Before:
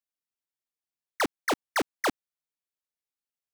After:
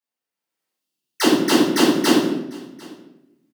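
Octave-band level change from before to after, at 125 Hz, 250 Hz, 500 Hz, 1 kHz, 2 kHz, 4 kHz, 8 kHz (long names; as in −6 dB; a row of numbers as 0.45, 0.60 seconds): +17.0, +20.0, +12.5, +6.5, +6.5, +15.0, +12.5 decibels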